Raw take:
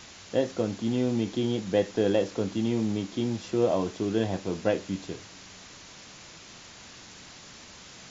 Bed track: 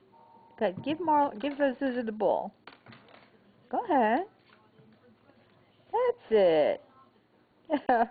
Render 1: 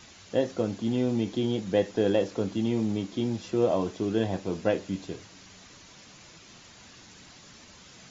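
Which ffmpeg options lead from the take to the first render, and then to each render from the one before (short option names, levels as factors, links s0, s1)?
-af "afftdn=nr=6:nf=-48"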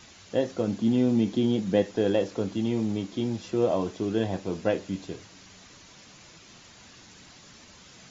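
-filter_complex "[0:a]asettb=1/sr,asplit=3[s0][s1][s2];[s0]atrim=end=0.674[s3];[s1]atrim=start=0.67:end=1.83,asetpts=PTS-STARTPTS,afade=t=in:d=0.004:c=qsin,afade=t=out:st=1.156:d=0.004:c=qsin,equalizer=f=210:w=1.5:g=6[s4];[s2]atrim=start=1.826[s5];[s3][s4]acrossfade=d=0.004:c1=hsin:c2=qsin[s6];[s6][s5]acrossfade=d=0.004:c1=qsin:c2=hsin"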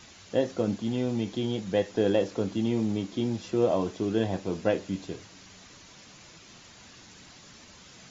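-filter_complex "[0:a]asettb=1/sr,asplit=3[s0][s1][s2];[s0]atrim=end=0.764[s3];[s1]atrim=start=0.76:end=1.91,asetpts=PTS-STARTPTS,afade=t=in:d=0.004:c=qsin,afade=t=out:st=1.146:d=0.004:c=qsin,equalizer=f=240:t=o:w=1.4:g=-7.5[s4];[s2]atrim=start=1.906[s5];[s3][s4]acrossfade=d=0.004:c1=hsin:c2=qsin[s6];[s6][s5]acrossfade=d=0.004:c1=qsin:c2=hsin"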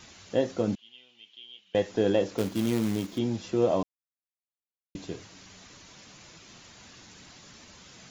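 -filter_complex "[0:a]asettb=1/sr,asplit=3[s0][s1][s2];[s0]atrim=end=0.754[s3];[s1]atrim=start=0.75:end=1.75,asetpts=PTS-STARTPTS,afade=t=in:d=0.004:c=qsin,afade=t=out:st=0.996:d=0.004:c=qsin,bandpass=f=3000:t=q:w=9[s4];[s2]atrim=start=1.746[s5];[s3][s4]acrossfade=d=0.004:c1=hsin:c2=qsin[s6];[s6][s5]acrossfade=d=0.004:c1=qsin:c2=hsin,asplit=3[s7][s8][s9];[s7]afade=t=out:st=2.37:d=0.02[s10];[s8]acrusher=bits=3:mode=log:mix=0:aa=0.000001,afade=t=in:st=2.37:d=0.02,afade=t=out:st=3.17:d=0.02[s11];[s9]afade=t=in:st=3.17:d=0.02[s12];[s10][s11][s12]amix=inputs=3:normalize=0,asplit=3[s13][s14][s15];[s13]atrim=end=3.83,asetpts=PTS-STARTPTS,afade=t=out:st=3.826:d=0.004:c=hsin[s16];[s14]atrim=start=3.83:end=4.95,asetpts=PTS-STARTPTS,volume=0[s17];[s15]atrim=start=4.95,asetpts=PTS-STARTPTS,afade=t=in:d=0.004:c=hsin[s18];[s16][s17][s18]concat=n=3:v=0:a=1"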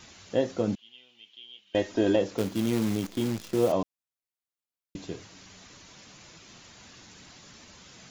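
-filter_complex "[0:a]asettb=1/sr,asplit=3[s0][s1][s2];[s0]atrim=end=1.674[s3];[s1]atrim=start=1.67:end=2.16,asetpts=PTS-STARTPTS,afade=t=in:d=0.004:c=qsin,afade=t=out:st=0.486:d=0.004:c=qsin,aecho=1:1:3.2:0.74,atrim=end_sample=21609[s4];[s2]atrim=start=2.156[s5];[s3][s4]acrossfade=d=0.004:c1=hsin:c2=qsin[s6];[s6][s5]acrossfade=d=0.004:c1=qsin:c2=hsin,asettb=1/sr,asplit=3[s7][s8][s9];[s7]atrim=end=2.734[s10];[s8]atrim=start=2.73:end=3.72,asetpts=PTS-STARTPTS,afade=t=in:d=0.004:c=qsin,afade=t=out:st=0.986:d=0.004:c=qsin,acrusher=bits=7:dc=4:mix=0:aa=0.000001[s11];[s9]atrim=start=3.716[s12];[s10][s11]acrossfade=d=0.004:c1=hsin:c2=qsin[s13];[s13][s12]acrossfade=d=0.004:c1=qsin:c2=hsin"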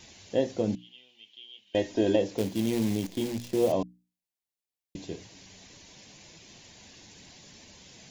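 -af "equalizer=f=1300:t=o:w=0.49:g=-13,bandreject=f=60:t=h:w=6,bandreject=f=120:t=h:w=6,bandreject=f=180:t=h:w=6,bandreject=f=240:t=h:w=6,bandreject=f=300:t=h:w=6"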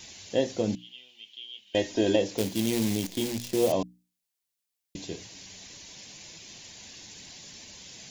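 -af "highshelf=f=2200:g=8"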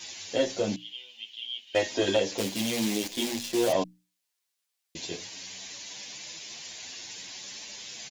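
-filter_complex "[0:a]asplit=2[s0][s1];[s1]highpass=f=720:p=1,volume=5.01,asoftclip=type=tanh:threshold=0.282[s2];[s0][s2]amix=inputs=2:normalize=0,lowpass=f=7600:p=1,volume=0.501,asplit=2[s3][s4];[s4]adelay=9.2,afreqshift=0.59[s5];[s3][s5]amix=inputs=2:normalize=1"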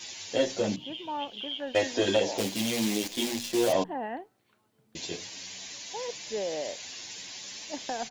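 -filter_complex "[1:a]volume=0.316[s0];[0:a][s0]amix=inputs=2:normalize=0"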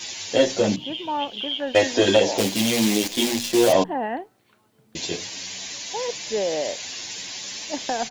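-af "volume=2.51"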